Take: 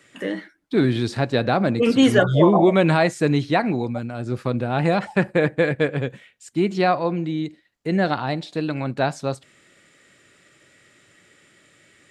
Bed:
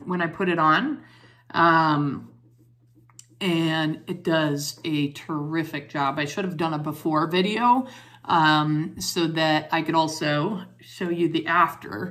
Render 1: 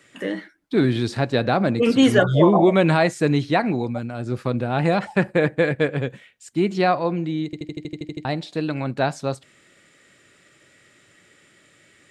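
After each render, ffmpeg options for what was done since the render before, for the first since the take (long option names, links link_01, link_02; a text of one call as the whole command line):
ffmpeg -i in.wav -filter_complex "[0:a]asplit=11[link_01][link_02][link_03][link_04][link_05][link_06][link_07][link_08][link_09][link_10][link_11];[link_01]atrim=end=7.532[link_12];[link_02]atrim=start=7.448:end=7.532[link_13];[link_03]atrim=start=7.448:end=7.532[link_14];[link_04]atrim=start=7.448:end=7.532[link_15];[link_05]atrim=start=7.448:end=7.532[link_16];[link_06]atrim=start=7.448:end=7.532[link_17];[link_07]atrim=start=7.448:end=7.532[link_18];[link_08]atrim=start=7.448:end=7.532[link_19];[link_09]atrim=start=7.448:end=7.532[link_20];[link_10]atrim=start=7.448:end=7.532[link_21];[link_11]atrim=start=8.248[link_22];[link_12][link_13]acrossfade=duration=0.004:curve1=hsin:curve2=hsin[link_23];[link_23][link_14]acrossfade=duration=0.004:curve1=hsin:curve2=hsin[link_24];[link_24][link_15]acrossfade=duration=0.004:curve1=hsin:curve2=hsin[link_25];[link_25][link_16]acrossfade=duration=0.004:curve1=hsin:curve2=hsin[link_26];[link_26][link_17]acrossfade=duration=0.004:curve1=hsin:curve2=hsin[link_27];[link_27][link_18]acrossfade=duration=0.004:curve1=hsin:curve2=hsin[link_28];[link_28][link_19]acrossfade=duration=0.004:curve1=hsin:curve2=hsin[link_29];[link_29][link_20]acrossfade=duration=0.004:curve1=hsin:curve2=hsin[link_30];[link_30][link_21]acrossfade=duration=0.004:curve1=hsin:curve2=hsin[link_31];[link_31][link_22]acrossfade=duration=0.004:curve1=hsin:curve2=hsin" out.wav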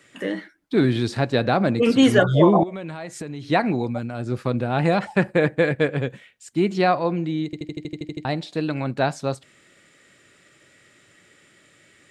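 ffmpeg -i in.wav -filter_complex "[0:a]asettb=1/sr,asplit=3[link_01][link_02][link_03];[link_01]atrim=end=2.634[link_04];[link_02]atrim=start=2.63:end=3.5,asetpts=PTS-STARTPTS,afade=type=in:duration=0.004:curve=qsin,afade=type=out:start_time=0.866:duration=0.004:curve=qsin,acompressor=threshold=-28dB:ratio=16:attack=3.2:release=140:knee=1:detection=peak[link_05];[link_03]atrim=start=3.496[link_06];[link_04][link_05]acrossfade=duration=0.004:curve1=hsin:curve2=qsin[link_07];[link_07][link_06]acrossfade=duration=0.004:curve1=qsin:curve2=hsin" out.wav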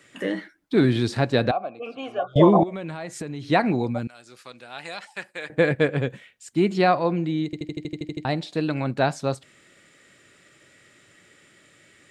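ffmpeg -i in.wav -filter_complex "[0:a]asettb=1/sr,asplit=3[link_01][link_02][link_03];[link_01]atrim=end=1.514[link_04];[link_02]atrim=start=1.51:end=2.36,asetpts=PTS-STARTPTS,afade=type=in:duration=0.004:curve=qsin,afade=type=out:start_time=0.846:duration=0.004:curve=qsin,asplit=3[link_05][link_06][link_07];[link_05]bandpass=frequency=730:width_type=q:width=8,volume=0dB[link_08];[link_06]bandpass=frequency=1090:width_type=q:width=8,volume=-6dB[link_09];[link_07]bandpass=frequency=2440:width_type=q:width=8,volume=-9dB[link_10];[link_08][link_09][link_10]amix=inputs=3:normalize=0[link_11];[link_03]atrim=start=2.356[link_12];[link_04][link_11]acrossfade=duration=0.004:curve1=hsin:curve2=qsin[link_13];[link_13][link_12]acrossfade=duration=0.004:curve1=qsin:curve2=hsin,asettb=1/sr,asplit=3[link_14][link_15][link_16];[link_14]atrim=end=4.074[link_17];[link_15]atrim=start=4.07:end=5.5,asetpts=PTS-STARTPTS,afade=type=in:duration=0.004:curve=qsin,afade=type=out:start_time=1.426:duration=0.004:curve=qsin,bandpass=frequency=8000:width_type=q:width=0.51[link_18];[link_16]atrim=start=5.496[link_19];[link_17][link_18]acrossfade=duration=0.004:curve1=hsin:curve2=qsin[link_20];[link_20][link_19]acrossfade=duration=0.004:curve1=qsin:curve2=hsin,asettb=1/sr,asplit=3[link_21][link_22][link_23];[link_21]atrim=end=6.694[link_24];[link_22]atrim=start=6.69:end=7.36,asetpts=PTS-STARTPTS,afade=type=in:duration=0.004:curve=qsin,afade=type=out:start_time=0.666:duration=0.004:curve=qsin,bandreject=frequency=5900:width=12[link_25];[link_23]atrim=start=7.356[link_26];[link_24][link_25]acrossfade=duration=0.004:curve1=hsin:curve2=qsin[link_27];[link_27][link_26]acrossfade=duration=0.004:curve1=qsin:curve2=hsin" out.wav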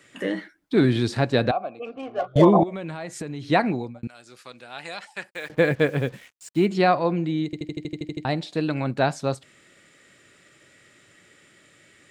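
ffmpeg -i in.wav -filter_complex "[0:a]asettb=1/sr,asplit=3[link_01][link_02][link_03];[link_01]atrim=end=1.854[link_04];[link_02]atrim=start=1.85:end=2.45,asetpts=PTS-STARTPTS,afade=type=in:duration=0.004:curve=qsin,afade=type=out:start_time=0.596:duration=0.004:curve=qsin,adynamicsmooth=sensitivity=3.5:basefreq=1200[link_05];[link_03]atrim=start=2.446[link_06];[link_04][link_05]acrossfade=duration=0.004:curve1=hsin:curve2=qsin[link_07];[link_07][link_06]acrossfade=duration=0.004:curve1=qsin:curve2=hsin,asplit=3[link_08][link_09][link_10];[link_08]afade=type=out:start_time=5.29:duration=0.02[link_11];[link_09]acrusher=bits=7:mix=0:aa=0.5,afade=type=in:start_time=5.29:duration=0.02,afade=type=out:start_time=6.65:duration=0.02[link_12];[link_10]afade=type=in:start_time=6.65:duration=0.02[link_13];[link_11][link_12][link_13]amix=inputs=3:normalize=0,asplit=2[link_14][link_15];[link_14]atrim=end=4.03,asetpts=PTS-STARTPTS,afade=type=out:start_time=3.61:duration=0.42[link_16];[link_15]atrim=start=4.03,asetpts=PTS-STARTPTS,afade=type=in:duration=0.004:curve=hsin[link_17];[link_16][link_17]concat=n=2:v=0:a=1" out.wav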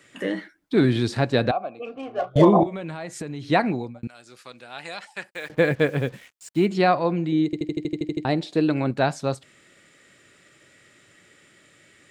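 ffmpeg -i in.wav -filter_complex "[0:a]asettb=1/sr,asplit=3[link_01][link_02][link_03];[link_01]atrim=end=1.764[link_04];[link_02]atrim=start=1.76:end=2.82,asetpts=PTS-STARTPTS,afade=type=in:duration=0.004:curve=qsin,afade=type=out:start_time=1.056:duration=0.004:curve=qsin,asplit=2[link_05][link_06];[link_06]adelay=33,volume=-13dB[link_07];[link_05][link_07]amix=inputs=2:normalize=0,atrim=end_sample=46746[link_08];[link_03]atrim=start=2.816[link_09];[link_04][link_08]acrossfade=duration=0.004:curve1=hsin:curve2=qsin[link_10];[link_10][link_09]acrossfade=duration=0.004:curve1=qsin:curve2=hsin,asettb=1/sr,asplit=3[link_11][link_12][link_13];[link_11]atrim=end=7.324[link_14];[link_12]atrim=start=7.32:end=8.91,asetpts=PTS-STARTPTS,afade=type=in:duration=0.004:curve=qsin,afade=type=out:start_time=1.586:duration=0.004:curve=qsin,equalizer=frequency=360:width=1.5:gain=6.5[link_15];[link_13]atrim=start=8.906[link_16];[link_14][link_15]acrossfade=duration=0.004:curve1=hsin:curve2=qsin[link_17];[link_17][link_16]acrossfade=duration=0.004:curve1=qsin:curve2=hsin" out.wav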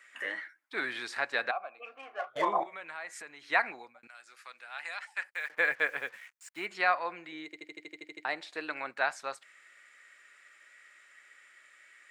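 ffmpeg -i in.wav -af "highpass=1300,highshelf=frequency=2600:width_type=q:width=1.5:gain=-7" out.wav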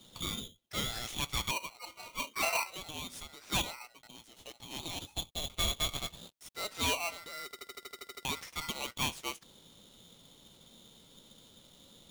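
ffmpeg -i in.wav -af "asoftclip=type=tanh:threshold=-25dB,aeval=exprs='val(0)*sgn(sin(2*PI*1700*n/s))':channel_layout=same" out.wav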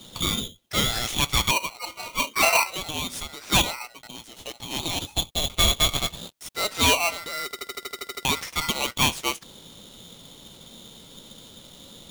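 ffmpeg -i in.wav -af "volume=12dB" out.wav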